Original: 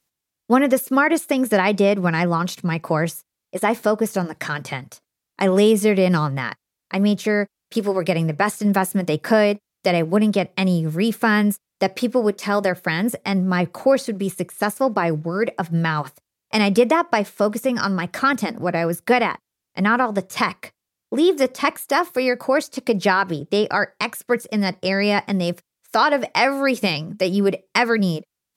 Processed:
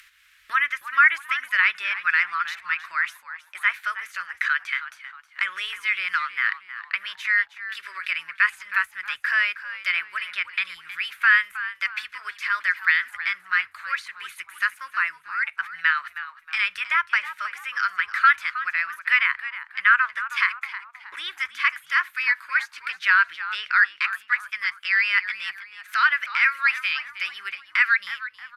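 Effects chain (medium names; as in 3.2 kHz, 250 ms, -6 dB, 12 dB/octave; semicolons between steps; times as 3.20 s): de-esser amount 55%; inverse Chebyshev band-stop 130–840 Hz, stop band 40 dB; three-band isolator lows -19 dB, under 550 Hz, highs -23 dB, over 2.6 kHz; upward compressor, threshold -42 dBFS; on a send: frequency-shifting echo 316 ms, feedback 37%, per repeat -92 Hz, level -13.5 dB; on the sum: resampled via 32 kHz; trim +9 dB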